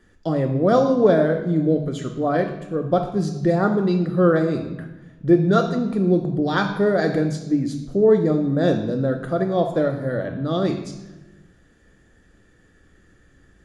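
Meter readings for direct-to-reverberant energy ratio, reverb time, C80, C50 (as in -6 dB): 5.0 dB, 1.1 s, 10.5 dB, 8.5 dB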